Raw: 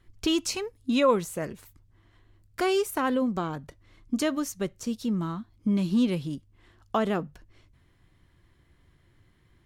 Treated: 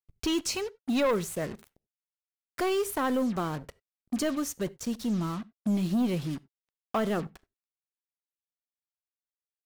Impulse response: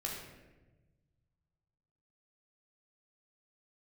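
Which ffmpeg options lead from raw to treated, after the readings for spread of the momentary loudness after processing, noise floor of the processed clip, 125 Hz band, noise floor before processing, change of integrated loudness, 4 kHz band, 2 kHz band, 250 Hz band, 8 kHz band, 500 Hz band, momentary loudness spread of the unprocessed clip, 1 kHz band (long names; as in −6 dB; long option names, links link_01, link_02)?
10 LU, below −85 dBFS, −0.5 dB, −63 dBFS, −2.5 dB, −3.0 dB, −2.0 dB, −2.0 dB, 0.0 dB, −2.5 dB, 12 LU, −3.0 dB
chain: -filter_complex "[0:a]acrusher=bits=6:mix=0:aa=0.5,asoftclip=type=tanh:threshold=-21.5dB,asplit=2[link_01][link_02];[1:a]atrim=start_sample=2205,atrim=end_sample=4410[link_03];[link_02][link_03]afir=irnorm=-1:irlink=0,volume=-18dB[link_04];[link_01][link_04]amix=inputs=2:normalize=0"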